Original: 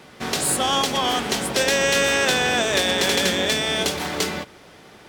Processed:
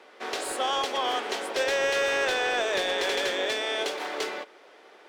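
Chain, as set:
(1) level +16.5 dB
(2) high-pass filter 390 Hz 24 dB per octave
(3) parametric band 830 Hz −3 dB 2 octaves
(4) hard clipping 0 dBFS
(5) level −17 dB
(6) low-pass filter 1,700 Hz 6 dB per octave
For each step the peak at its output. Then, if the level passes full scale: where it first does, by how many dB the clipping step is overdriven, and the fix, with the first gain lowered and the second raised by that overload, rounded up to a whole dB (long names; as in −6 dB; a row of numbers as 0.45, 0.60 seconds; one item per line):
+6.5, +10.5, +9.0, 0.0, −17.0, −17.5 dBFS
step 1, 9.0 dB
step 1 +7.5 dB, step 5 −8 dB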